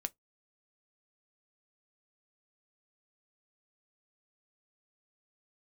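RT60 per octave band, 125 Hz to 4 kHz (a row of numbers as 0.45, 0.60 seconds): 0.20, 0.15, 0.15, 0.15, 0.10, 0.10 seconds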